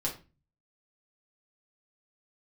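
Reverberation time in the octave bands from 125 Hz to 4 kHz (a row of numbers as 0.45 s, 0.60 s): 0.70 s, 0.45 s, 0.30 s, 0.30 s, 0.30 s, 0.25 s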